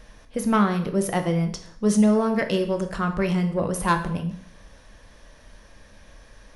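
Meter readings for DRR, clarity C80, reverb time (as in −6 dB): 6.0 dB, 14.5 dB, 0.60 s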